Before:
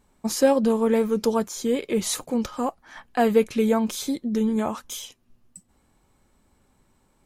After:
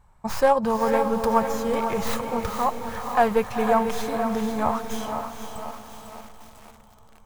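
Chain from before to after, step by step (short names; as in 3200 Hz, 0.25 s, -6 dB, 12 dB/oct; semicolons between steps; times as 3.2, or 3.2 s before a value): tracing distortion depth 0.14 ms; EQ curve 130 Hz 0 dB, 280 Hz -20 dB, 940 Hz 0 dB, 3400 Hz -13 dB; diffused feedback echo 0.463 s, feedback 49%, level -8 dB; lo-fi delay 0.499 s, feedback 55%, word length 8-bit, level -9 dB; gain +8.5 dB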